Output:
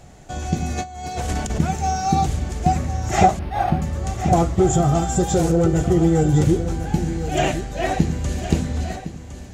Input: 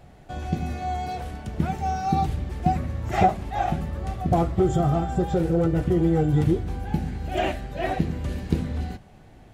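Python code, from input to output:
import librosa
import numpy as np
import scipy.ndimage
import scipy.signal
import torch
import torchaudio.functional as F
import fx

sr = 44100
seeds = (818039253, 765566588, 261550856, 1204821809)

p1 = fx.peak_eq(x, sr, hz=6800.0, db=14.5, octaves=0.75)
p2 = fx.over_compress(p1, sr, threshold_db=-34.0, ratio=-0.5, at=(0.75, 1.58), fade=0.02)
p3 = fx.high_shelf(p2, sr, hz=3700.0, db=8.5, at=(4.95, 5.52))
p4 = p3 + fx.echo_single(p3, sr, ms=1060, db=-11.5, dry=0)
p5 = fx.resample_linear(p4, sr, factor=6, at=(3.39, 3.82))
y = p5 * 10.0 ** (4.0 / 20.0)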